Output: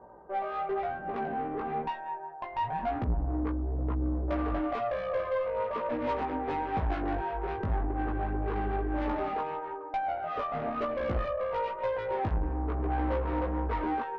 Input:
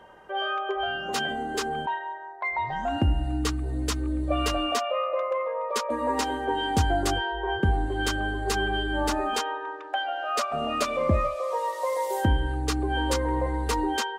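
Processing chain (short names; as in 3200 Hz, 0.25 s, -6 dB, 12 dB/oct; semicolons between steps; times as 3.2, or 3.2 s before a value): inverse Chebyshev low-pass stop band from 4800 Hz, stop band 70 dB; tube stage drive 28 dB, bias 0.35; chorus 1 Hz, delay 16.5 ms, depth 3.1 ms; gain +4 dB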